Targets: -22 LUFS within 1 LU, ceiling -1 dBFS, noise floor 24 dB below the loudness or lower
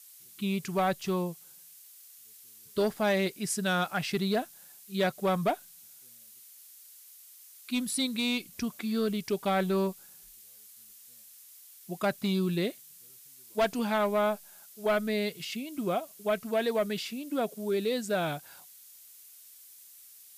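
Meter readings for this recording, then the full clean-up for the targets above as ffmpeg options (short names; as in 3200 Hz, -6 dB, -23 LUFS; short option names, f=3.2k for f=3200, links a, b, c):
noise floor -53 dBFS; noise floor target -55 dBFS; loudness -30.5 LUFS; peak -19.5 dBFS; loudness target -22.0 LUFS
-> -af "afftdn=nr=6:nf=-53"
-af "volume=8.5dB"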